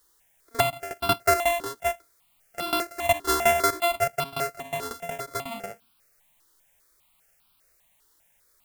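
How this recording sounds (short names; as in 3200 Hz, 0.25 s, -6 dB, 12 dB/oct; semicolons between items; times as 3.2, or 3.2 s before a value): a buzz of ramps at a fixed pitch in blocks of 64 samples; tremolo saw down 5.5 Hz, depth 90%; a quantiser's noise floor 12-bit, dither triangular; notches that jump at a steady rate 5 Hz 660–1900 Hz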